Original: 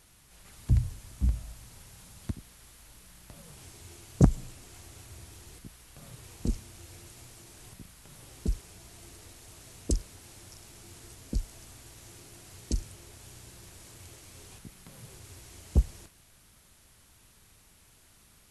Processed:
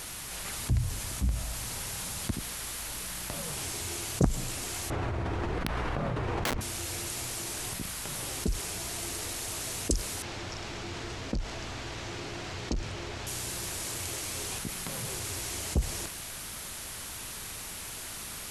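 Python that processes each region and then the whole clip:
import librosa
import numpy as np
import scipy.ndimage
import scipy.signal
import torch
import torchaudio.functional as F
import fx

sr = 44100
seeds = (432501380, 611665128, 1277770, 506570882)

y = fx.chain(x, sr, fx.lowpass(hz=1300.0, slope=12),
    fx.overflow_wrap(gain_db=33.0),
    fx.env_flatten(amount_pct=100), at=(4.9, 6.61))
y = fx.chain(y, sr, fx.air_absorb(metres=170.0),
    fx.clip_hard(threshold_db=-27.0), at=(10.22, 13.27))
y = fx.low_shelf(y, sr, hz=260.0, db=-8.5)
y = fx.env_flatten(y, sr, amount_pct=50)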